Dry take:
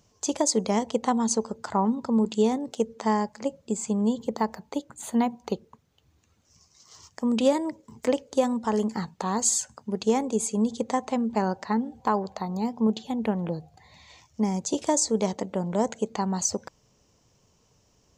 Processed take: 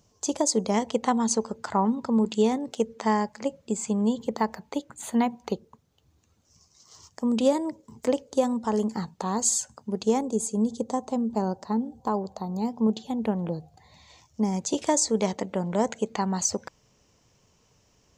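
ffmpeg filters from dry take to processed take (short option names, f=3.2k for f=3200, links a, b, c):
-af "asetnsamples=n=441:p=0,asendcmd='0.74 equalizer g 3;5.52 equalizer g -4.5;10.21 equalizer g -14.5;12.58 equalizer g -4.5;14.53 equalizer g 4',equalizer=f=2.1k:t=o:w=1.4:g=-4"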